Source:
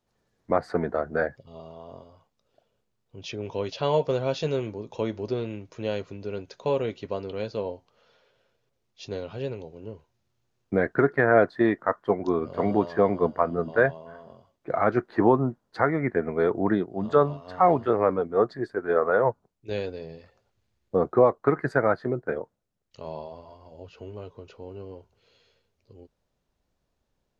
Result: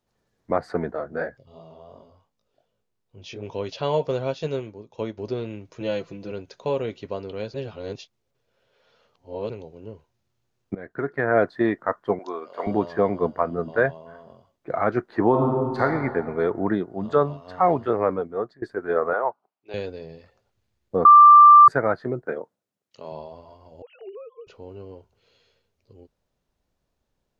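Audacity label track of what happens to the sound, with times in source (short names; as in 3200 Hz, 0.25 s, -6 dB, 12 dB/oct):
0.910000	3.430000	chorus 2.7 Hz, delay 18 ms, depth 4.5 ms
4.310000	5.180000	upward expander, over -45 dBFS
5.800000	6.320000	comb 6 ms, depth 80%
7.540000	9.500000	reverse
10.750000	11.440000	fade in, from -21 dB
12.190000	12.670000	HPF 600 Hz
15.290000	15.820000	reverb throw, RT60 1.8 s, DRR -2.5 dB
18.150000	18.620000	fade out, to -22.5 dB
19.130000	19.740000	speaker cabinet 480–4300 Hz, peaks and dips at 480 Hz -7 dB, 760 Hz +5 dB, 1200 Hz +3 dB, 1800 Hz -6 dB, 3600 Hz -8 dB
21.050000	21.680000	bleep 1180 Hz -6 dBFS
22.250000	23.120000	HPF 180 Hz
23.820000	24.470000	sine-wave speech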